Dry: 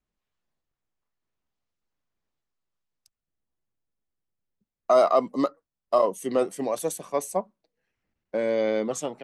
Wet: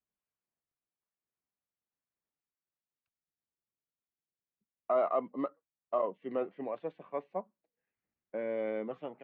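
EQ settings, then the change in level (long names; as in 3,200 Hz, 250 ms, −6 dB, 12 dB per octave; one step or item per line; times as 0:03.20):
high-pass filter 140 Hz 6 dB per octave
transistor ladder low-pass 3,400 Hz, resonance 30%
high-frequency loss of the air 430 metres
−2.0 dB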